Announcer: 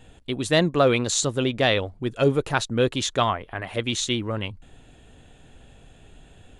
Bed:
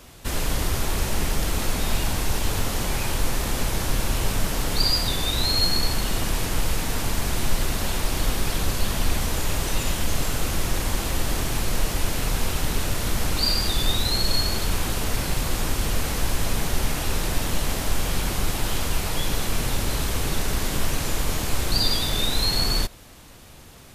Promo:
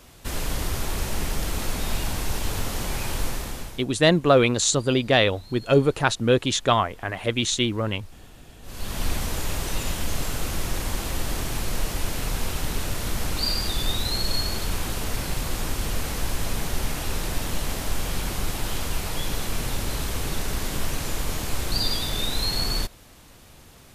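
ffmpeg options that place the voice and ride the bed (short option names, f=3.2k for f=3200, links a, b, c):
-filter_complex "[0:a]adelay=3500,volume=2dB[a];[1:a]volume=20dB,afade=t=out:st=3.23:d=0.62:silence=0.0707946,afade=t=in:st=8.62:d=0.43:silence=0.0707946[b];[a][b]amix=inputs=2:normalize=0"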